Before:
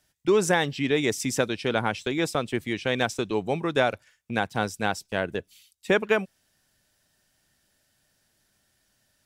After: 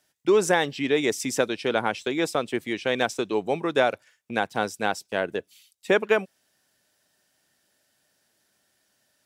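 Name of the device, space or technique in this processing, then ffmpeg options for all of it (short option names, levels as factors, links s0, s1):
filter by subtraction: -filter_complex "[0:a]asplit=2[s0][s1];[s1]lowpass=410,volume=-1[s2];[s0][s2]amix=inputs=2:normalize=0"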